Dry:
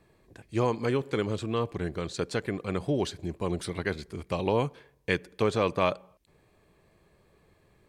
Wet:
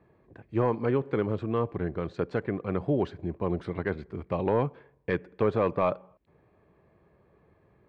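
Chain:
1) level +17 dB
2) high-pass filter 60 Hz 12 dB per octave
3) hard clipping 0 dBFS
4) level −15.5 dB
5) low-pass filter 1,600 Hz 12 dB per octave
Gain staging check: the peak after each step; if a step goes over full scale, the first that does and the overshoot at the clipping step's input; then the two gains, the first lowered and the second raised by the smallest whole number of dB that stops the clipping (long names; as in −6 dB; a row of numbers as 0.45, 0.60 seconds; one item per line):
+6.5, +7.0, 0.0, −15.5, −15.0 dBFS
step 1, 7.0 dB
step 1 +10 dB, step 4 −8.5 dB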